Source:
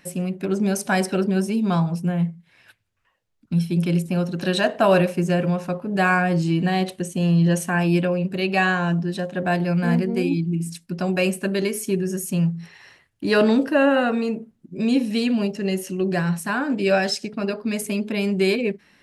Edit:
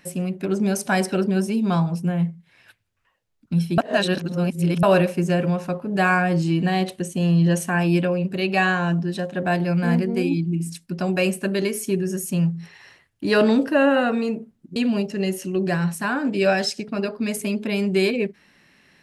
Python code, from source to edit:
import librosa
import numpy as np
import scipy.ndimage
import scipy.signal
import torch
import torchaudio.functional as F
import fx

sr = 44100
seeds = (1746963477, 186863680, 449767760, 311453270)

y = fx.edit(x, sr, fx.reverse_span(start_s=3.78, length_s=1.05),
    fx.cut(start_s=14.76, length_s=0.45), tone=tone)